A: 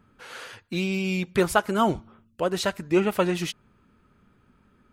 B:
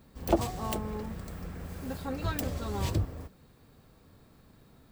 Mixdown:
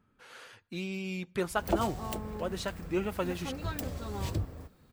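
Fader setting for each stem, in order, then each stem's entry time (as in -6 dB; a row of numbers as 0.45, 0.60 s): -10.0, -3.5 dB; 0.00, 1.40 s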